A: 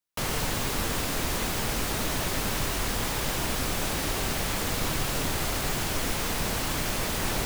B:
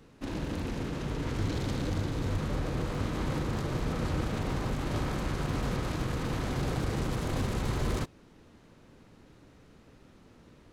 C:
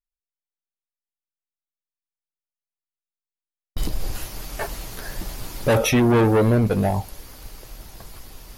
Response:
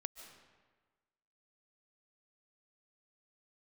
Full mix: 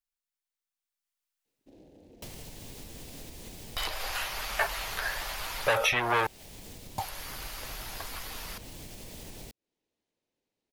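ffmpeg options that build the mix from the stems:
-filter_complex "[0:a]lowshelf=f=400:g=11.5,adelay=2050,volume=0.158[s0];[1:a]afwtdn=0.0141,bass=f=250:g=-10,treble=f=4000:g=0,alimiter=level_in=3.35:limit=0.0631:level=0:latency=1:release=263,volume=0.299,adelay=1450,volume=0.266[s1];[2:a]equalizer=f=250:w=0.86:g=-14,volume=1.33,asplit=3[s2][s3][s4];[s2]atrim=end=6.27,asetpts=PTS-STARTPTS,afade=t=out:st=6.266:d=0.004:c=hsin[s5];[s3]atrim=start=6.27:end=6.98,asetpts=PTS-STARTPTS,volume=0[s6];[s4]atrim=start=6.98,asetpts=PTS-STARTPTS,afade=t=in:d=0.004:c=hsin[s7];[s5][s6][s7]concat=n=3:v=0:a=1[s8];[s0][s1]amix=inputs=2:normalize=0,equalizer=f=1300:w=1.3:g=-13.5,acompressor=threshold=0.00891:ratio=6,volume=1[s9];[s8][s9]amix=inputs=2:normalize=0,dynaudnorm=f=750:g=3:m=2.51,lowshelf=f=460:g=-10,acrossover=split=460|3600[s10][s11][s12];[s10]acompressor=threshold=0.01:ratio=4[s13];[s11]acompressor=threshold=0.0631:ratio=4[s14];[s12]acompressor=threshold=0.00631:ratio=4[s15];[s13][s14][s15]amix=inputs=3:normalize=0"

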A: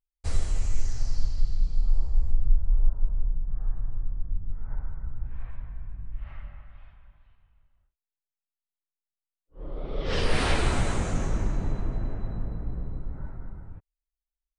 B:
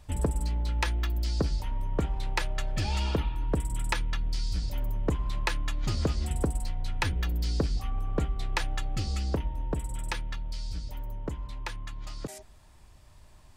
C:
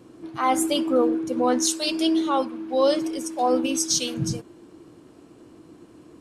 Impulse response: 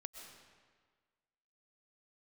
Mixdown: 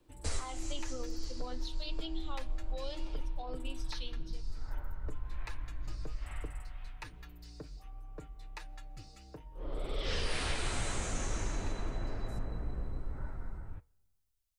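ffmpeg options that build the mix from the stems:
-filter_complex "[0:a]highshelf=f=2300:g=10.5,volume=1.33,asplit=2[s0][s1];[s1]volume=0.0841[s2];[1:a]bandreject=f=3200:w=8.7,aecho=1:1:6.6:0.69,volume=0.178,asplit=2[s3][s4];[s4]volume=0.15[s5];[2:a]highshelf=f=5400:t=q:w=3:g=-12,volume=0.15,asplit=3[s6][s7][s8];[s7]volume=0.211[s9];[s8]apad=whole_len=643287[s10];[s0][s10]sidechaincompress=threshold=0.00398:ratio=8:attack=38:release=217[s11];[3:a]atrim=start_sample=2205[s12];[s2][s5][s9]amix=inputs=3:normalize=0[s13];[s13][s12]afir=irnorm=-1:irlink=0[s14];[s11][s3][s6][s14]amix=inputs=4:normalize=0,equalizer=f=170:w=1.4:g=-5,acrossover=split=230|1900[s15][s16][s17];[s15]acompressor=threshold=0.0398:ratio=4[s18];[s16]acompressor=threshold=0.0141:ratio=4[s19];[s17]acompressor=threshold=0.0141:ratio=4[s20];[s18][s19][s20]amix=inputs=3:normalize=0,flanger=delay=1.9:depth=6.2:regen=-83:speed=0.61:shape=triangular"

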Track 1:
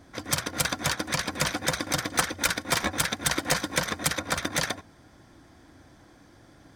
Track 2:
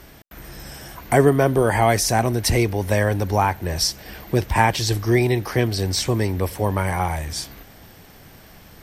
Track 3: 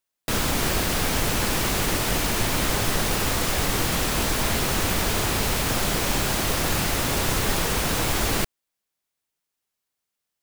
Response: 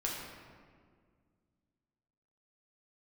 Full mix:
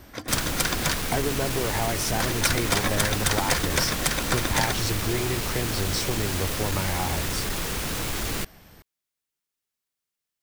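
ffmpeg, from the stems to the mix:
-filter_complex "[0:a]volume=1.06,asplit=3[s0][s1][s2];[s0]atrim=end=0.97,asetpts=PTS-STARTPTS,afade=t=out:st=0.966:d=0.004:c=hsin[s3];[s1]atrim=start=0.97:end=2.2,asetpts=PTS-STARTPTS,volume=0[s4];[s2]atrim=start=2.2,asetpts=PTS-STARTPTS,afade=t=in:d=0.004:c=hsin[s5];[s3][s4][s5]concat=n=3:v=0:a=1[s6];[1:a]acompressor=threshold=0.112:ratio=6,volume=0.562[s7];[2:a]equalizer=f=750:w=1.2:g=-4,asoftclip=type=tanh:threshold=0.119,volume=0.708[s8];[s6][s7][s8]amix=inputs=3:normalize=0"

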